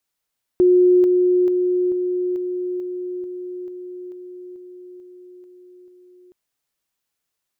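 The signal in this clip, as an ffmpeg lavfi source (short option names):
-f lavfi -i "aevalsrc='pow(10,(-10-3*floor(t/0.44))/20)*sin(2*PI*361*t)':d=5.72:s=44100"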